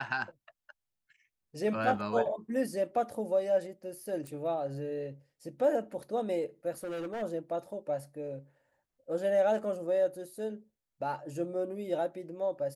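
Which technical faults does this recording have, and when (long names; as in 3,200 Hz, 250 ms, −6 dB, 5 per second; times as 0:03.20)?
0:04.27: click
0:06.83–0:07.23: clipping −34 dBFS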